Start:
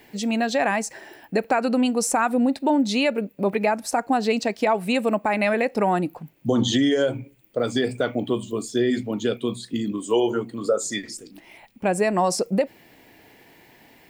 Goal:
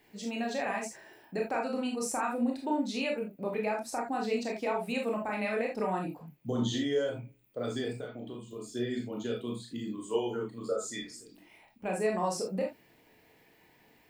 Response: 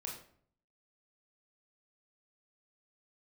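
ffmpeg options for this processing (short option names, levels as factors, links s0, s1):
-filter_complex "[0:a]asettb=1/sr,asplit=3[s0][s1][s2];[s0]atrim=end=7.944[s3];[s1]atrim=start=7.94:end=8.72,asetpts=PTS-STARTPTS,afade=t=in:d=0.004:c=qsin,afade=t=out:st=0.776:d=0.004:c=qsin,acompressor=threshold=0.0447:ratio=6[s4];[s2]atrim=start=8.716[s5];[s3][s4]acrossfade=d=0.004:c1=hsin:c2=qsin[s6];[s6][s5]acrossfade=d=0.004:c1=qsin:c2=hsin[s7];[1:a]atrim=start_sample=2205,atrim=end_sample=3969[s8];[s7][s8]afir=irnorm=-1:irlink=0,volume=0.376"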